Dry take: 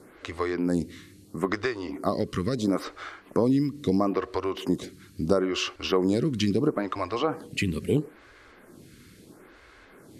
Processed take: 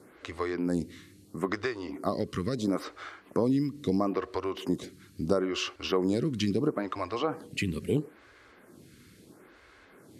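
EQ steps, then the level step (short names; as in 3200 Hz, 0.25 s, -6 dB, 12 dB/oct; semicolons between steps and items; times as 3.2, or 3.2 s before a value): HPF 55 Hz; -3.5 dB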